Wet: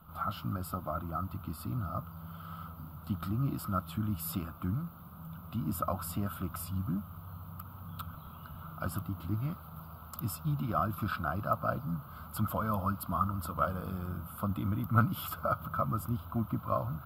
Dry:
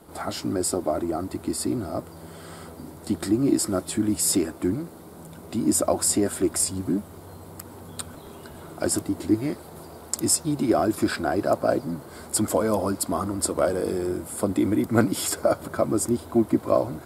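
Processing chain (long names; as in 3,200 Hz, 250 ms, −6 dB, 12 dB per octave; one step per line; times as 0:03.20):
drawn EQ curve 170 Hz 0 dB, 380 Hz −27 dB, 560 Hz −15 dB, 890 Hz −10 dB, 1,300 Hz +5 dB, 1,800 Hz −22 dB, 2,900 Hz −6 dB, 6,200 Hz −27 dB, 9,100 Hz −27 dB, 14,000 Hz +3 dB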